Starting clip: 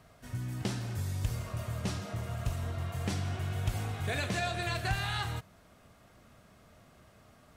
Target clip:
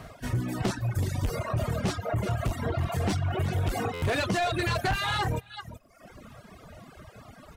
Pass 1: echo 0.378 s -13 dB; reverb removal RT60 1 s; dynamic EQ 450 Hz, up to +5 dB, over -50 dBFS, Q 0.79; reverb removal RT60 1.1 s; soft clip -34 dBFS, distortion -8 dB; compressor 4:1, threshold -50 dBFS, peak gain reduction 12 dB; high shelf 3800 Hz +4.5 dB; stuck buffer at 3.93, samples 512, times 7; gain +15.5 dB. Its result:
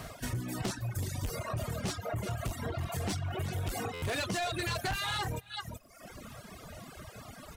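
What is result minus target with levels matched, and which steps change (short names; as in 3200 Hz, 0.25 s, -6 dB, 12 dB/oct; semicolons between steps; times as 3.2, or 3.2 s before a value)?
compressor: peak gain reduction +7.5 dB; 8000 Hz band +7.0 dB
change: compressor 4:1, threshold -40 dBFS, peak gain reduction 4.5 dB; change: high shelf 3800 Hz -5 dB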